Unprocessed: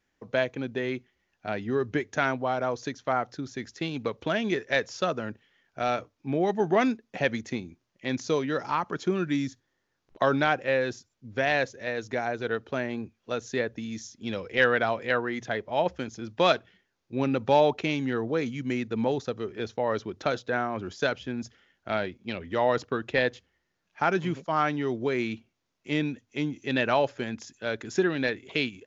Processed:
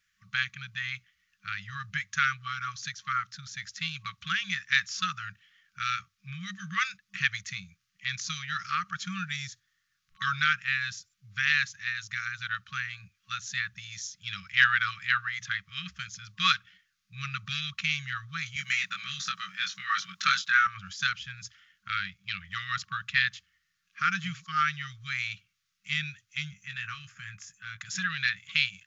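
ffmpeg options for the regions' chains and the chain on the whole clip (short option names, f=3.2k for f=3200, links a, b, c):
-filter_complex "[0:a]asettb=1/sr,asplit=3[a][b][c];[a]atrim=end=18.564[d];[b]atrim=start=18.56:end=20.67,asetpts=PTS-STARTPTS,afade=t=in:d=0.004:c=qsin,afade=t=out:st=2.106:d=0.004:c=qsin,highpass=f=200:w=0.5412,highpass=f=200:w=1.3066,acontrast=28,asplit=2[e][f];[f]adelay=22,volume=-3dB[g];[e][g]amix=inputs=2:normalize=0,atrim=end_sample=93051[h];[c]atrim=start=20.666[i];[d][h]acrossfade=d=0.004:c1=hsin:c2=qsin[j];[j][i]acrossfade=d=0.004:c1=qsin:c2=hsin,asettb=1/sr,asplit=3[k][l][m];[k]atrim=end=26.534[n];[l]atrim=start=26.53:end=27.81,asetpts=PTS-STARTPTS,afade=t=in:d=0.004:c=qsin,afade=t=out:st=1.276:d=0.004:c=qsin,acrossover=split=150|3000[o][p][q];[p]acompressor=threshold=-33dB:ratio=4:attack=3.2:release=140:knee=2.83:detection=peak[r];[o][r][q]amix=inputs=3:normalize=0,equalizer=f=4.1k:w=1.2:g=-14,asplit=2[s][t];[t]adelay=19,volume=-9dB[u];[s][u]amix=inputs=2:normalize=0,atrim=end_sample=56448[v];[m]atrim=start=27.806[w];[n][v]acrossfade=d=0.004:c1=hsin:c2=qsin[x];[x][w]acrossfade=d=0.004:c1=qsin:c2=hsin,afftfilt=real='re*(1-between(b*sr/4096,200,1100))':imag='im*(1-between(b*sr/4096,200,1100))':win_size=4096:overlap=0.75,tiltshelf=f=920:g=-5.5"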